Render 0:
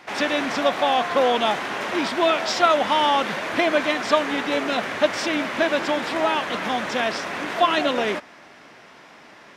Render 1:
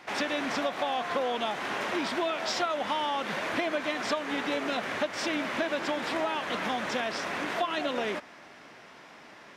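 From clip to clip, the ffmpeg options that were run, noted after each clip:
ffmpeg -i in.wav -af "acompressor=threshold=-23dB:ratio=6,volume=-3.5dB" out.wav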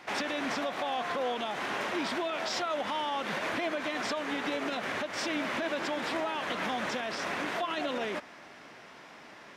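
ffmpeg -i in.wav -af "alimiter=limit=-23.5dB:level=0:latency=1:release=62" out.wav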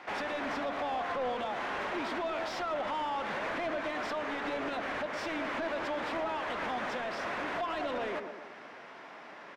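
ffmpeg -i in.wav -filter_complex "[0:a]asplit=2[link_01][link_02];[link_02]adelay=119,lowpass=frequency=820:poles=1,volume=-7dB,asplit=2[link_03][link_04];[link_04]adelay=119,lowpass=frequency=820:poles=1,volume=0.53,asplit=2[link_05][link_06];[link_06]adelay=119,lowpass=frequency=820:poles=1,volume=0.53,asplit=2[link_07][link_08];[link_08]adelay=119,lowpass=frequency=820:poles=1,volume=0.53,asplit=2[link_09][link_10];[link_10]adelay=119,lowpass=frequency=820:poles=1,volume=0.53,asplit=2[link_11][link_12];[link_12]adelay=119,lowpass=frequency=820:poles=1,volume=0.53[link_13];[link_01][link_03][link_05][link_07][link_09][link_11][link_13]amix=inputs=7:normalize=0,asplit=2[link_14][link_15];[link_15]highpass=frequency=720:poles=1,volume=16dB,asoftclip=type=tanh:threshold=-20.5dB[link_16];[link_14][link_16]amix=inputs=2:normalize=0,lowpass=frequency=1200:poles=1,volume=-6dB,volume=-4dB" out.wav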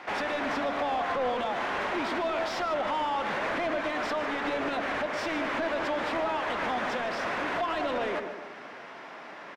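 ffmpeg -i in.wav -af "aecho=1:1:151:0.211,volume=4.5dB" out.wav

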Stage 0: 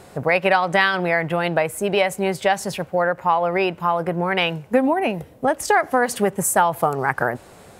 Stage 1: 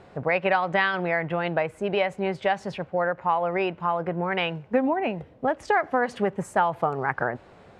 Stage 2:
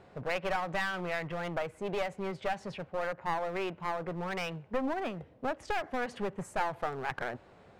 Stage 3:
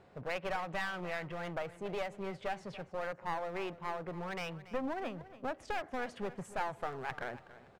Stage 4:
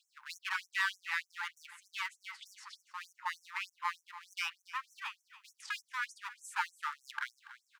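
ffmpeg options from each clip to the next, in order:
ffmpeg -i in.wav -af "lowpass=3200,volume=-5dB" out.wav
ffmpeg -i in.wav -af "aeval=exprs='clip(val(0),-1,0.0422)':channel_layout=same,volume=-6.5dB" out.wav
ffmpeg -i in.wav -af "aecho=1:1:284|568|852:0.158|0.0475|0.0143,volume=-4.5dB" out.wav
ffmpeg -i in.wav -af "afftfilt=real='re*gte(b*sr/1024,810*pow(5700/810,0.5+0.5*sin(2*PI*3.3*pts/sr)))':imag='im*gte(b*sr/1024,810*pow(5700/810,0.5+0.5*sin(2*PI*3.3*pts/sr)))':win_size=1024:overlap=0.75,volume=7dB" out.wav

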